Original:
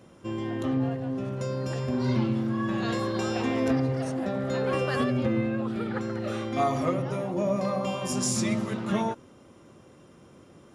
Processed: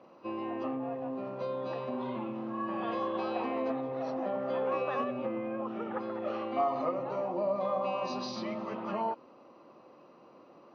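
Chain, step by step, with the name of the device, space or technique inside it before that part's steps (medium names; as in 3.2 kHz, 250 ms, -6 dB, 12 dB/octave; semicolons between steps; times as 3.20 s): hearing aid with frequency lowering (knee-point frequency compression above 2.2 kHz 1.5:1; compression 3:1, threshold -28 dBFS, peak gain reduction 6 dB; cabinet simulation 380–5300 Hz, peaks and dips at 400 Hz -5 dB, 1.5 kHz -9 dB, 2.6 kHz +8 dB); resonant high shelf 1.7 kHz -9.5 dB, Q 1.5; trim +2 dB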